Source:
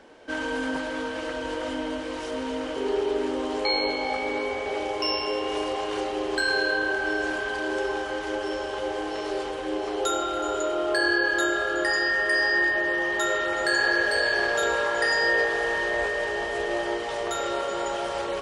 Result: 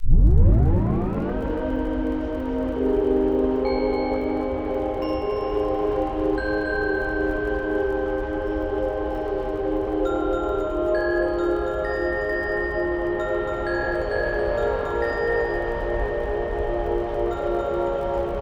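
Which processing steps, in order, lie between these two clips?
tape start at the beginning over 1.34 s; LPF 2200 Hz 6 dB/oct; tilt -4 dB/oct; crackle 22/s -36 dBFS; feedback echo 0.278 s, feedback 34%, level -3 dB; gain -1.5 dB

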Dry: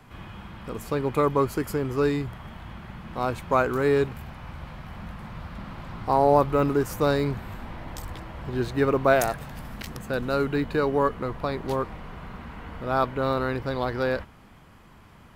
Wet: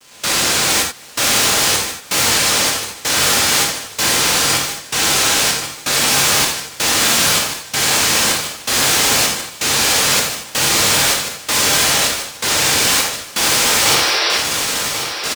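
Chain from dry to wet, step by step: noise vocoder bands 1; fuzz box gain 54 dB, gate -54 dBFS; step gate "..xxxxx." 128 bpm -24 dB; painted sound noise, 13.85–14.38, 310–5900 Hz -16 dBFS; feedback echo 1.088 s, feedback 24%, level -8.5 dB; non-linear reverb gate 0.11 s flat, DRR 0 dB; gain -3.5 dB

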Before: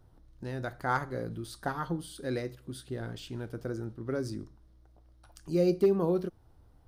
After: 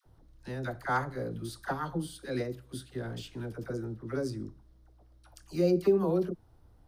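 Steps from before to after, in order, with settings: dispersion lows, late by 58 ms, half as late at 720 Hz

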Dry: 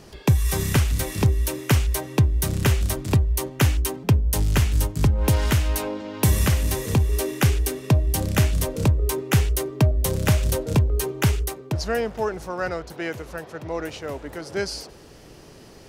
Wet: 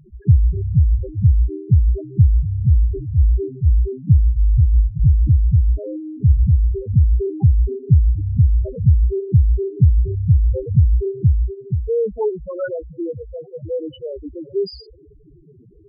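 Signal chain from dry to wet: 2.68–3.82 transient shaper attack -12 dB, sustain +4 dB; loudest bins only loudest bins 2; gain +8 dB

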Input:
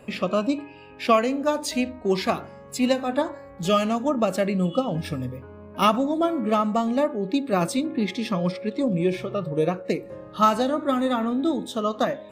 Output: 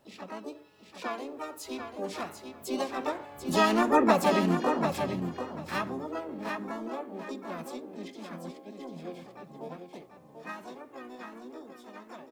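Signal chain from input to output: Doppler pass-by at 4, 11 m/s, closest 3.1 m; in parallel at -2 dB: compressor 10:1, threshold -41 dBFS, peak gain reduction 23 dB; on the sum: harmoniser +4 st -9 dB, +7 st -3 dB, +12 st -8 dB; on a send at -18.5 dB: reverb, pre-delay 3 ms; on the sum: requantised 12-bit, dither none; feedback echo 0.741 s, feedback 17%, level -7 dB; gain -2 dB

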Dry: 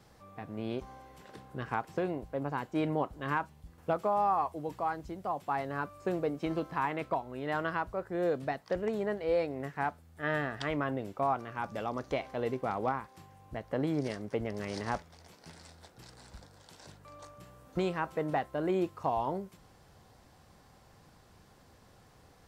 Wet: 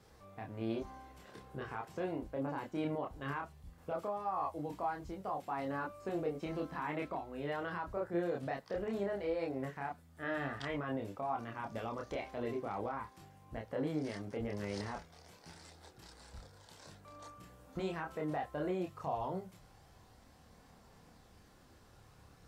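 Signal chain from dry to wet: limiter -26.5 dBFS, peak gain reduction 9 dB; chorus voices 4, 0.15 Hz, delay 28 ms, depth 2.3 ms; gain +1 dB

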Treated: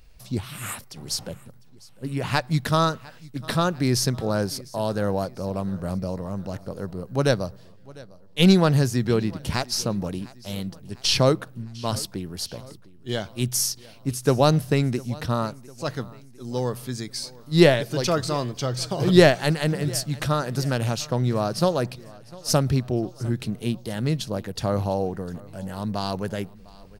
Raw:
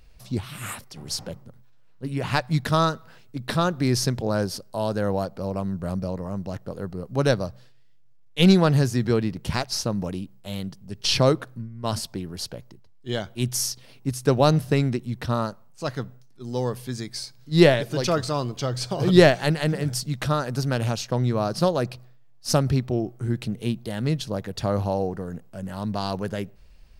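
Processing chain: high shelf 7000 Hz +4.5 dB; on a send: feedback echo 0.702 s, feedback 53%, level -22 dB

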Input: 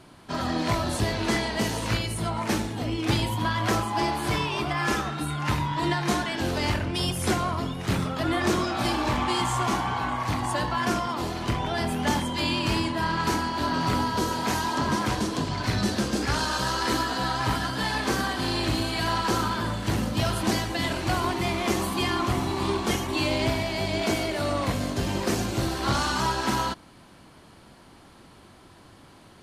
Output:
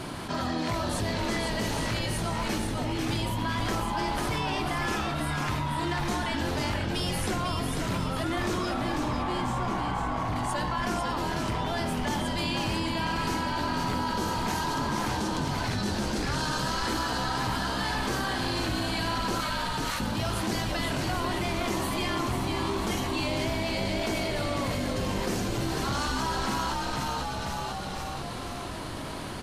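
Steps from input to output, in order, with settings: 8.74–10.36 high shelf 2400 Hz -11 dB; 19.4–20 HPF 1200 Hz 12 dB/oct; frequency-shifting echo 0.495 s, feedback 45%, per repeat -68 Hz, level -5.5 dB; fast leveller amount 70%; gain -7.5 dB

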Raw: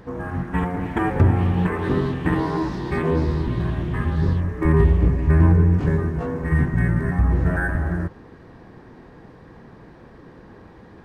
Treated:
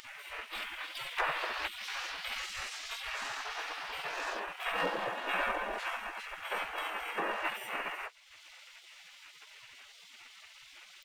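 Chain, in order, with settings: harmoniser -7 st -8 dB, -3 st -10 dB, +7 st -1 dB; dynamic EQ 120 Hz, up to -3 dB, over -24 dBFS, Q 3.5; spectral gate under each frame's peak -25 dB weak; in parallel at +1 dB: upward compressor, threshold -39 dBFS; on the sum: gain -6.5 dB

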